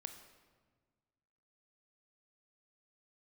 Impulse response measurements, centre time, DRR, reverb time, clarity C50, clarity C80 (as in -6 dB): 20 ms, 7.0 dB, 1.5 s, 8.5 dB, 10.0 dB